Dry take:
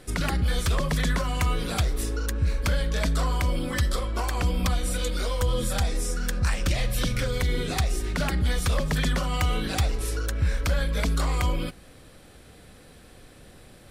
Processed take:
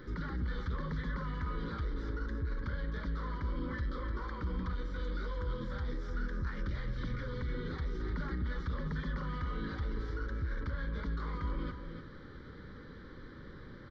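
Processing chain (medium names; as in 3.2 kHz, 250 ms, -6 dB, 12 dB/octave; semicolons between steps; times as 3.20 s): bass shelf 250 Hz -10 dB; in parallel at +0.5 dB: compressor with a negative ratio -39 dBFS; on the sum: saturation -28 dBFS, distortion -11 dB; tape spacing loss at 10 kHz 43 dB; static phaser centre 2.6 kHz, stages 6; on a send: delay 300 ms -8 dB; on the sum: trim -1 dB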